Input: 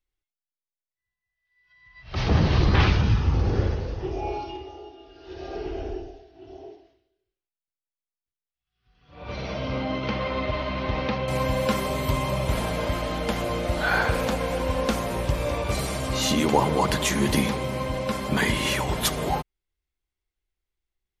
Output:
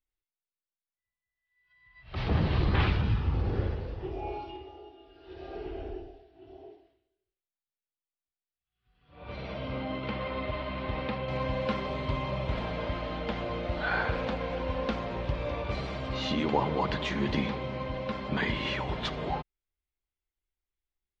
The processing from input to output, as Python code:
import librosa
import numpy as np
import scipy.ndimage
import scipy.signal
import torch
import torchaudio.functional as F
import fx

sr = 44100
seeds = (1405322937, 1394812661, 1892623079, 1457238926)

y = scipy.signal.sosfilt(scipy.signal.butter(4, 4100.0, 'lowpass', fs=sr, output='sos'), x)
y = y * librosa.db_to_amplitude(-6.5)